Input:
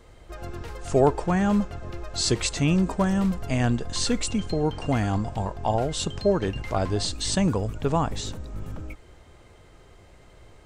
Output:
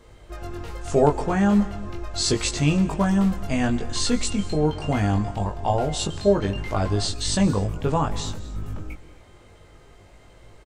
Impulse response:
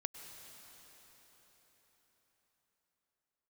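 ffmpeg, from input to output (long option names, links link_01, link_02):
-filter_complex "[0:a]asplit=2[link_01][link_02];[link_02]adelay=20,volume=-3.5dB[link_03];[link_01][link_03]amix=inputs=2:normalize=0,asplit=2[link_04][link_05];[1:a]atrim=start_sample=2205,afade=type=out:start_time=0.3:duration=0.01,atrim=end_sample=13671,asetrate=37926,aresample=44100[link_06];[link_05][link_06]afir=irnorm=-1:irlink=0,volume=-0.5dB[link_07];[link_04][link_07]amix=inputs=2:normalize=0,volume=-5dB"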